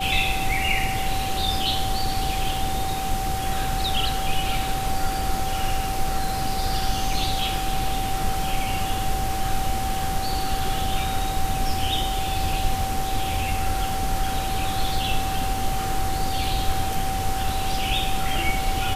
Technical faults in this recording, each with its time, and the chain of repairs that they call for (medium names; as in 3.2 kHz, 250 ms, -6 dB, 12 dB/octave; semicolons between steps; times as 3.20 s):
whine 770 Hz -27 dBFS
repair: band-stop 770 Hz, Q 30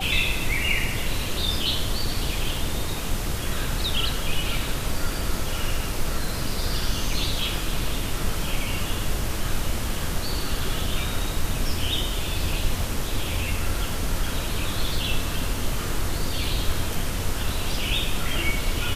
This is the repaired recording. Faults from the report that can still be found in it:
nothing left